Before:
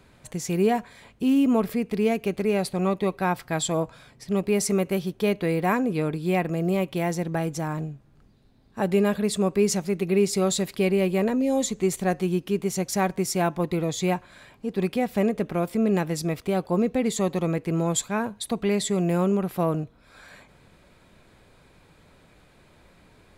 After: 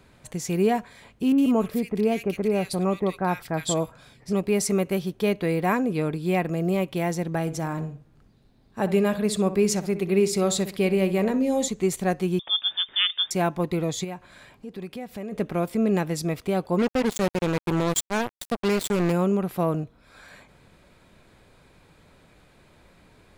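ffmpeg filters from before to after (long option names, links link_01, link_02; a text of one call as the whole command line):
ffmpeg -i in.wav -filter_complex "[0:a]asettb=1/sr,asplit=3[link_01][link_02][link_03];[link_01]atrim=end=1.324[link_04];[link_02]atrim=start=1.32:end=4.33,asetpts=PTS-STARTPTS,afade=type=in:duration=0.004:curve=qsin,afade=type=out:start_time=3.006:duration=0.004:curve=qsin,acrossover=split=1800[link_05][link_06];[link_06]adelay=60[link_07];[link_05][link_07]amix=inputs=2:normalize=0,atrim=end_sample=132741[link_08];[link_03]atrim=start=4.326[link_09];[link_04][link_08]acrossfade=duration=0.004:curve1=hsin:curve2=qsin[link_10];[link_10][link_09]acrossfade=duration=0.004:curve1=qsin:curve2=hsin,asettb=1/sr,asplit=3[link_11][link_12][link_13];[link_11]atrim=end=7.414[link_14];[link_12]atrim=start=7.41:end=11.68,asetpts=PTS-STARTPTS,afade=type=in:duration=0.004:curve=qsin,afade=type=out:start_time=4.266:duration=0.004:curve=qsin,asplit=2[link_15][link_16];[link_16]adelay=62,lowpass=frequency=2400:poles=1,volume=-12dB,asplit=2[link_17][link_18];[link_18]adelay=62,lowpass=frequency=2400:poles=1,volume=0.36,asplit=2[link_19][link_20];[link_20]adelay=62,lowpass=frequency=2400:poles=1,volume=0.36,asplit=2[link_21][link_22];[link_22]adelay=62,lowpass=frequency=2400:poles=1,volume=0.36[link_23];[link_15][link_17][link_19][link_21][link_23]amix=inputs=5:normalize=0,atrim=end_sample=188307[link_24];[link_13]atrim=start=11.676[link_25];[link_14][link_24]acrossfade=duration=0.004:curve1=hsin:curve2=qsin[link_26];[link_26][link_25]acrossfade=duration=0.004:curve1=qsin:curve2=hsin,asettb=1/sr,asplit=3[link_27][link_28][link_29];[link_27]atrim=end=12.394[link_30];[link_28]atrim=start=12.39:end=13.31,asetpts=PTS-STARTPTS,afade=type=in:duration=0.004:curve=qsin,afade=type=out:start_time=0.916:duration=0.004:curve=qsin,lowpass=frequency=3100:width_type=q:width=0.5098,lowpass=frequency=3100:width_type=q:width=0.6013,lowpass=frequency=3100:width_type=q:width=0.9,lowpass=frequency=3100:width_type=q:width=2.563,afreqshift=-3700[link_31];[link_29]atrim=start=13.306[link_32];[link_30][link_31]acrossfade=duration=0.004:curve1=hsin:curve2=qsin[link_33];[link_33][link_32]acrossfade=duration=0.004:curve1=qsin:curve2=hsin,asplit=3[link_34][link_35][link_36];[link_34]afade=type=out:start_time=14.03:duration=0.02[link_37];[link_35]acompressor=threshold=-40dB:ratio=2:attack=3.2:release=140:knee=1:detection=peak,afade=type=in:start_time=14.03:duration=0.02,afade=type=out:start_time=15.31:duration=0.02[link_38];[link_36]afade=type=in:start_time=15.31:duration=0.02[link_39];[link_37][link_38][link_39]amix=inputs=3:normalize=0,asplit=3[link_40][link_41][link_42];[link_40]afade=type=out:start_time=16.78:duration=0.02[link_43];[link_41]acrusher=bits=3:mix=0:aa=0.5,afade=type=in:start_time=16.78:duration=0.02,afade=type=out:start_time=19.11:duration=0.02[link_44];[link_42]afade=type=in:start_time=19.11:duration=0.02[link_45];[link_43][link_44][link_45]amix=inputs=3:normalize=0" out.wav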